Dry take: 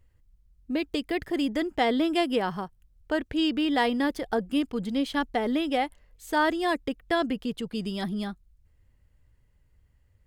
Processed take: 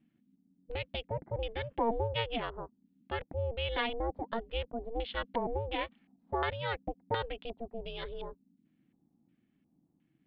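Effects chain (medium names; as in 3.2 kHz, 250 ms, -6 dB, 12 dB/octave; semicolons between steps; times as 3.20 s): LFO low-pass square 1.4 Hz 640–3000 Hz; ring modulator 230 Hz; Chebyshev low-pass 4.3 kHz, order 4; trim -6.5 dB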